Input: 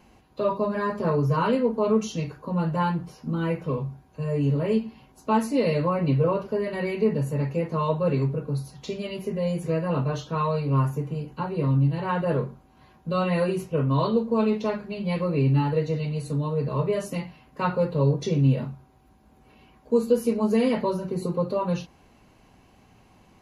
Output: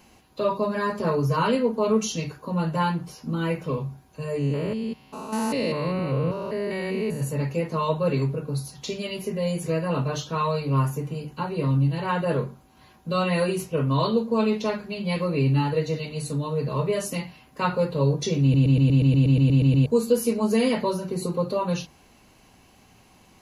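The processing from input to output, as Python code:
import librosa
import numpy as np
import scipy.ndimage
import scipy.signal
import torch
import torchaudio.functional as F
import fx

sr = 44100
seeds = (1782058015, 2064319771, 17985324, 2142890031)

y = fx.spec_steps(x, sr, hold_ms=200, at=(4.38, 7.2), fade=0.02)
y = fx.edit(y, sr, fx.stutter_over(start_s=18.42, slice_s=0.12, count=12), tone=tone)
y = fx.high_shelf(y, sr, hz=2900.0, db=10.0)
y = fx.hum_notches(y, sr, base_hz=50, count=3)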